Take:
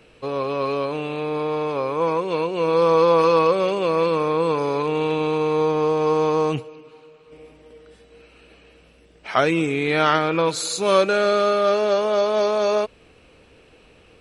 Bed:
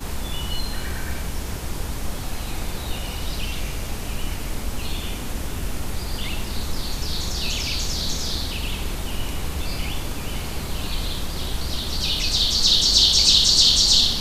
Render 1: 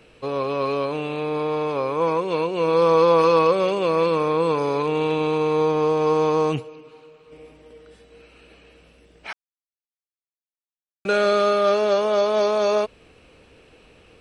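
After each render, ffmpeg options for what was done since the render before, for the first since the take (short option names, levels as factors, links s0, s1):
-filter_complex "[0:a]asplit=3[s0][s1][s2];[s0]atrim=end=9.33,asetpts=PTS-STARTPTS,afade=t=out:st=9.326:d=0.004:c=hsin[s3];[s1]atrim=start=9.33:end=11.05,asetpts=PTS-STARTPTS,volume=0[s4];[s2]atrim=start=11.05,asetpts=PTS-STARTPTS,afade=t=in:d=0.004:c=hsin[s5];[s3][s4][s5]concat=n=3:v=0:a=1"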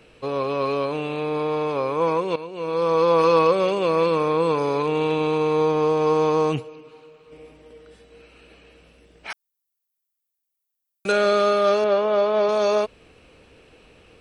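-filter_complex "[0:a]asettb=1/sr,asplit=3[s0][s1][s2];[s0]atrim=end=9.304[s3];[s1]atrim=start=9.3:end=11.12,asetpts=PTS-STARTPTS,afade=t=in:d=0.004:c=qsin,afade=t=out:st=1.816:d=0.004:c=qsin,aemphasis=mode=production:type=50fm[s4];[s2]atrim=start=11.116[s5];[s3][s4]acrossfade=d=0.004:c1=hsin:c2=qsin[s6];[s6][s5]acrossfade=d=0.004:c1=qsin:c2=hsin,asettb=1/sr,asplit=3[s7][s8][s9];[s7]atrim=end=11.844[s10];[s8]atrim=start=11.84:end=12.49,asetpts=PTS-STARTPTS,afade=t=in:d=0.004:c=qsin,afade=t=out:st=0.646:d=0.004:c=qsin,highpass=110,lowpass=3000[s11];[s9]atrim=start=12.486[s12];[s10][s11]acrossfade=d=0.004:c1=hsin:c2=qsin[s13];[s13][s12]acrossfade=d=0.004:c1=qsin:c2=hsin,asplit=2[s14][s15];[s14]atrim=end=2.36,asetpts=PTS-STARTPTS,afade=t=out:st=2.356:d=0.004:c=hsin:silence=0.211349[s16];[s15]atrim=start=2.36,asetpts=PTS-STARTPTS,afade=t=in:d=0.97:silence=0.211349[s17];[s16][s17]concat=n=2:v=0:a=1"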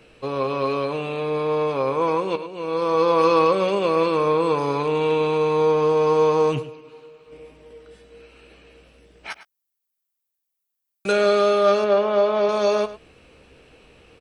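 -filter_complex "[0:a]asplit=2[s0][s1];[s1]adelay=15,volume=0.299[s2];[s0][s2]amix=inputs=2:normalize=0,asplit=2[s3][s4];[s4]adelay=105,volume=0.2,highshelf=f=4000:g=-2.36[s5];[s3][s5]amix=inputs=2:normalize=0"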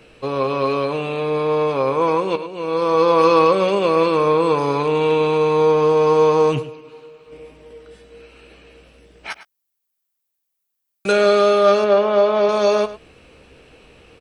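-af "volume=1.5"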